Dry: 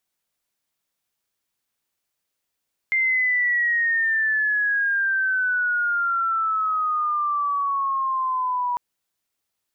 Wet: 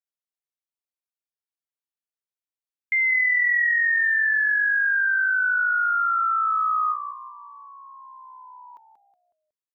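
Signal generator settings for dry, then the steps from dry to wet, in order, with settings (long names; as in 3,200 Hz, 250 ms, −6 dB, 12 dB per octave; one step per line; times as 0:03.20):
glide logarithmic 2,100 Hz → 970 Hz −17.5 dBFS → −21 dBFS 5.85 s
noise gate with hold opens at −19 dBFS
linear-phase brick-wall high-pass 240 Hz
echo with shifted repeats 184 ms, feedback 38%, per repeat −90 Hz, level −10 dB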